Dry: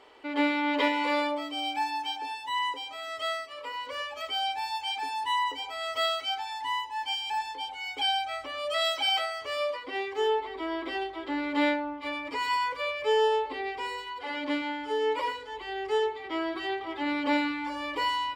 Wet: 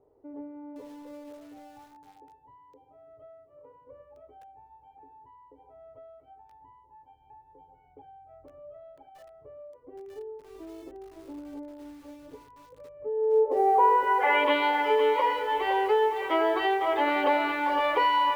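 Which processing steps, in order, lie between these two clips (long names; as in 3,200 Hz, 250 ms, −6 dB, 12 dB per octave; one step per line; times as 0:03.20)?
drawn EQ curve 140 Hz 0 dB, 200 Hz −10 dB, 420 Hz +12 dB, 680 Hz +14 dB, 3,100 Hz +4 dB, 9,900 Hz −20 dB
downward compressor 4 to 1, threshold −22 dBFS, peak gain reduction 11.5 dB
low-pass filter sweep 160 Hz → 11,000 Hz, 0:12.90–0:15.16
feedback echo at a low word length 512 ms, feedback 35%, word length 8 bits, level −9 dB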